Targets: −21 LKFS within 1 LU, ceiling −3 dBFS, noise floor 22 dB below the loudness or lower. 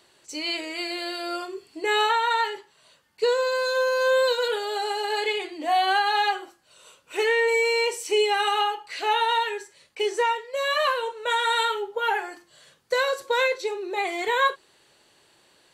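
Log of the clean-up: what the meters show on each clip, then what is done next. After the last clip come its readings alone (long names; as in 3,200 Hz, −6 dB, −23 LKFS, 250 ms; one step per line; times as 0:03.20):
integrated loudness −24.5 LKFS; sample peak −13.5 dBFS; target loudness −21.0 LKFS
→ level +3.5 dB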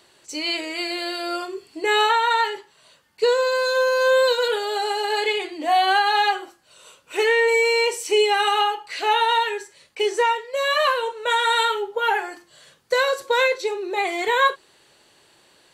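integrated loudness −21.0 LKFS; sample peak −10.0 dBFS; background noise floor −58 dBFS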